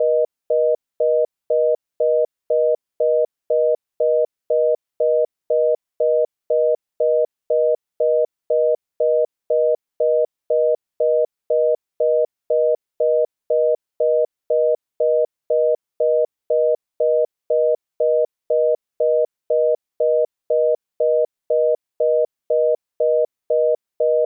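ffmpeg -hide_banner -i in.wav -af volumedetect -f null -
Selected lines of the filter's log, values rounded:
mean_volume: -19.5 dB
max_volume: -10.4 dB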